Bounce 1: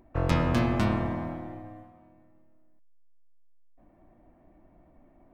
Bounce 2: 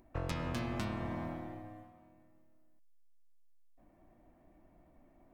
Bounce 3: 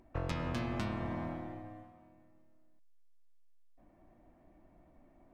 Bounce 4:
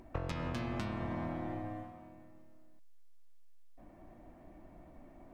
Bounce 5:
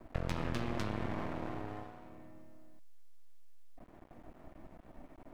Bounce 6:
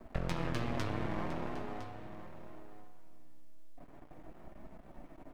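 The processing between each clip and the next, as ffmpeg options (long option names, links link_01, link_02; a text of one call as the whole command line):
ffmpeg -i in.wav -af "highshelf=frequency=2700:gain=8,acompressor=threshold=-28dB:ratio=6,volume=-5.5dB" out.wav
ffmpeg -i in.wav -af "highshelf=frequency=8800:gain=-11,volume=1dB" out.wav
ffmpeg -i in.wav -af "acompressor=threshold=-42dB:ratio=6,volume=7.5dB" out.wav
ffmpeg -i in.wav -af "aeval=exprs='max(val(0),0)':channel_layout=same,volume=4.5dB" out.wav
ffmpeg -i in.wav -af "flanger=delay=4.5:depth=2.9:regen=-43:speed=0.64:shape=triangular,aecho=1:1:1009:0.211,volume=5dB" out.wav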